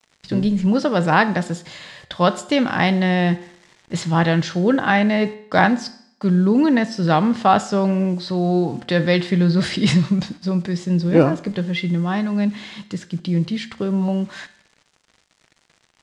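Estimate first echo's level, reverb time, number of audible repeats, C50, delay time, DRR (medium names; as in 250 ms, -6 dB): no echo, 0.65 s, no echo, 16.0 dB, no echo, 11.5 dB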